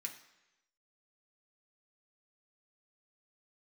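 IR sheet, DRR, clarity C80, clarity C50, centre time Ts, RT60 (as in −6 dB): 1.0 dB, 12.5 dB, 10.0 dB, 16 ms, 1.0 s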